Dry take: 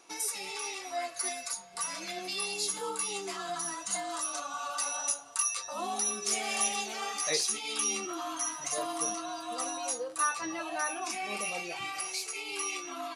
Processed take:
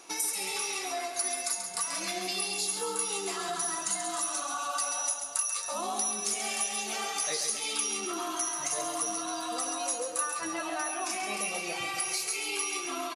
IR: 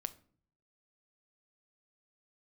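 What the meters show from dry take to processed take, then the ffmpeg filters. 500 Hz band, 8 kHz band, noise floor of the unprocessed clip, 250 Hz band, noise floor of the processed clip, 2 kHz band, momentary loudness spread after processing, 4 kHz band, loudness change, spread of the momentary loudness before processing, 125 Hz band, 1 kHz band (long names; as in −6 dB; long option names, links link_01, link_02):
+1.0 dB, +2.0 dB, −44 dBFS, +2.0 dB, −37 dBFS, +1.0 dB, 3 LU, +1.5 dB, +2.0 dB, 7 LU, can't be measured, +1.0 dB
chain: -filter_complex "[0:a]acompressor=threshold=-38dB:ratio=6,aecho=1:1:136|272|408|544|680|816|952:0.447|0.241|0.13|0.0703|0.038|0.0205|0.0111,asplit=2[link_01][link_02];[1:a]atrim=start_sample=2205,asetrate=26019,aresample=44100,highshelf=frequency=8600:gain=12[link_03];[link_02][link_03]afir=irnorm=-1:irlink=0,volume=-0.5dB[link_04];[link_01][link_04]amix=inputs=2:normalize=0"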